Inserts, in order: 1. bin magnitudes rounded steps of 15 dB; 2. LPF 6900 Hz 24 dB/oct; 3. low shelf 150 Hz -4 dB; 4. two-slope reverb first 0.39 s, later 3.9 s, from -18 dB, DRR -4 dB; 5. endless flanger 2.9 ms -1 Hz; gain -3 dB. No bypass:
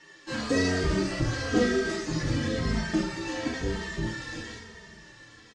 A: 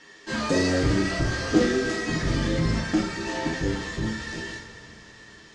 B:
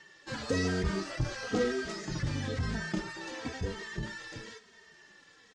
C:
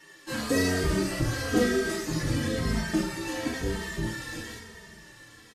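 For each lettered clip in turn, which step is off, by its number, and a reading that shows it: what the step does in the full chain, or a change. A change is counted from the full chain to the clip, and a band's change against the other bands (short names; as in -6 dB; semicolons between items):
5, crest factor change +2.0 dB; 4, 250 Hz band -2.0 dB; 2, 8 kHz band +3.5 dB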